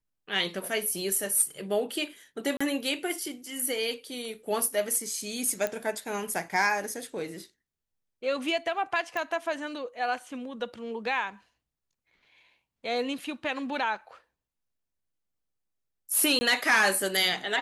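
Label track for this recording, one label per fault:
1.160000	1.160000	dropout 2.5 ms
2.570000	2.600000	dropout 35 ms
5.670000	5.670000	pop -15 dBFS
9.170000	9.170000	pop -19 dBFS
16.390000	16.410000	dropout 20 ms

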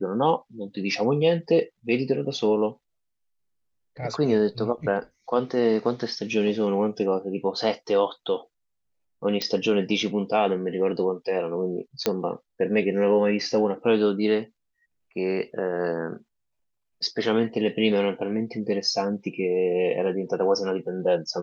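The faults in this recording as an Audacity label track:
9.420000	9.420000	pop -12 dBFS
12.060000	12.060000	pop -7 dBFS

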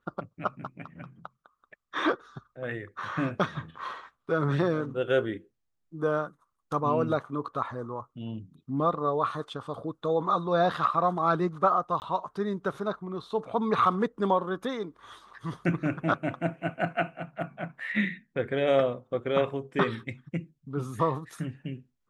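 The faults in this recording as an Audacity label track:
12.000000	12.020000	dropout 19 ms

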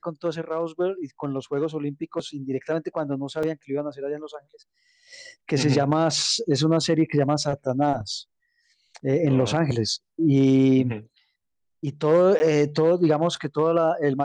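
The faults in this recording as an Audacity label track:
3.430000	3.430000	dropout 3.9 ms
12.390000	12.400000	dropout 10 ms

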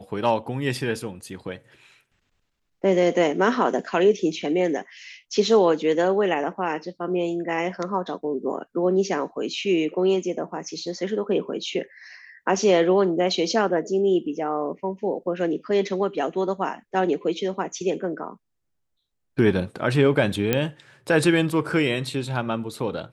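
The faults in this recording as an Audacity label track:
20.530000	20.530000	pop -6 dBFS

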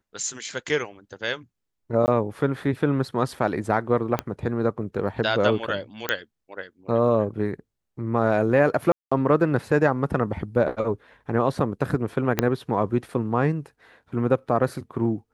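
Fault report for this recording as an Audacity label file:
2.060000	2.080000	dropout 19 ms
4.190000	4.190000	pop -10 dBFS
6.090000	6.090000	pop -7 dBFS
8.920000	9.120000	dropout 195 ms
12.390000	12.390000	pop -5 dBFS

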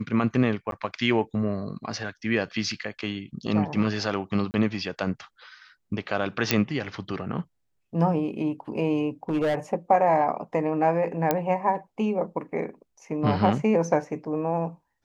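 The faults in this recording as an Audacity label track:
0.710000	0.720000	dropout
3.470000	3.470000	dropout 4.6 ms
4.510000	4.540000	dropout 29 ms
6.510000	6.510000	pop -4 dBFS
9.290000	9.550000	clipped -20.5 dBFS
11.310000	11.310000	pop -8 dBFS

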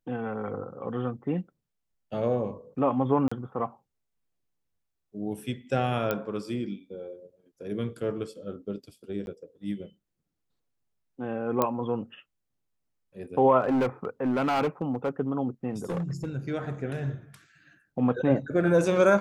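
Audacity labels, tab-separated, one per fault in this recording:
3.280000	3.310000	dropout 35 ms
6.110000	6.110000	pop -14 dBFS
9.260000	9.270000	dropout 11 ms
11.620000	11.620000	pop -10 dBFS
13.600000	15.090000	clipped -21.5 dBFS
15.700000	16.350000	clipped -26.5 dBFS

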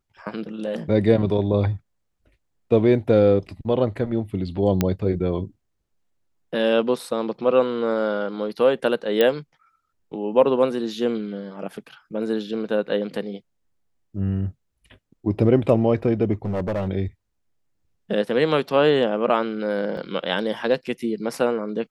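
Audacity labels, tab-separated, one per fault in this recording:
4.810000	4.810000	pop -6 dBFS
9.210000	9.210000	pop -7 dBFS
16.450000	16.890000	clipped -20.5 dBFS
19.970000	19.970000	dropout 3.4 ms

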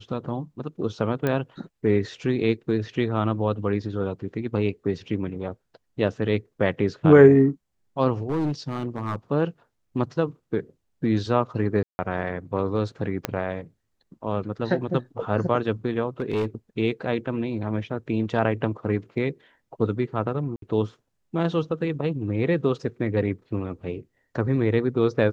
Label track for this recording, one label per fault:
1.270000	1.270000	pop -12 dBFS
8.230000	9.160000	clipped -21 dBFS
11.830000	11.990000	dropout 160 ms
13.250000	13.250000	pop -9 dBFS
16.200000	16.460000	clipped -20 dBFS
20.560000	20.620000	dropout 62 ms

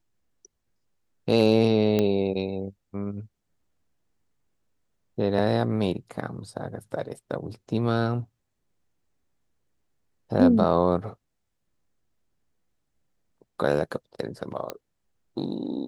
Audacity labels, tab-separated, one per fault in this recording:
1.990000	1.990000	pop -11 dBFS
14.700000	14.700000	pop -16 dBFS

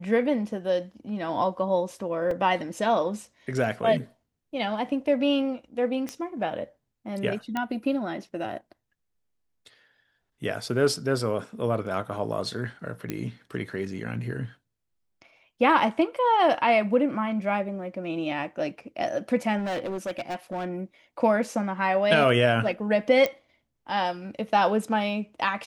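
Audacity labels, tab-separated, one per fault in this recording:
2.310000	2.310000	dropout 3.1 ms
6.090000	6.090000	pop -18 dBFS
7.570000	7.570000	pop -15 dBFS
13.100000	13.100000	pop -15 dBFS
19.580000	20.740000	clipped -26.5 dBFS
23.260000	23.260000	pop -12 dBFS

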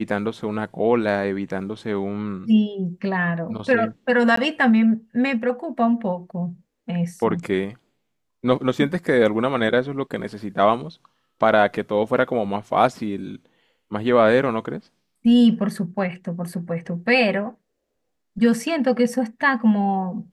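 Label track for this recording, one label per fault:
4.360000	4.370000	dropout 14 ms

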